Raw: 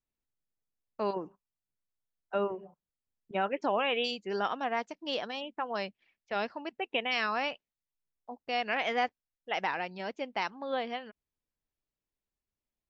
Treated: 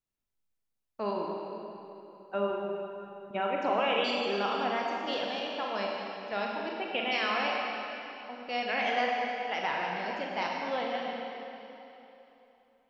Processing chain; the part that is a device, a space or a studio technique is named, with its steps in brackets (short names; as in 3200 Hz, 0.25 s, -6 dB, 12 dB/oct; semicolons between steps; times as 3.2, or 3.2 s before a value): tunnel (flutter echo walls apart 7 m, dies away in 0.23 s; reverb RT60 3.2 s, pre-delay 32 ms, DRR -1.5 dB); gain -2 dB